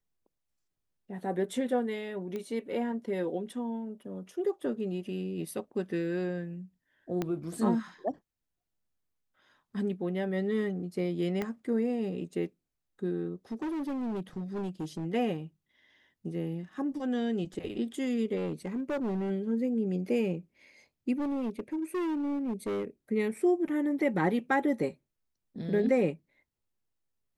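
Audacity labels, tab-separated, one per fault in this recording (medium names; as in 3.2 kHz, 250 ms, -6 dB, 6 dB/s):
2.360000	2.360000	pop -25 dBFS
7.220000	7.220000	pop -18 dBFS
11.420000	11.420000	pop -20 dBFS
13.510000	15.060000	clipped -31 dBFS
18.360000	19.310000	clipped -28.5 dBFS
21.130000	22.850000	clipped -29 dBFS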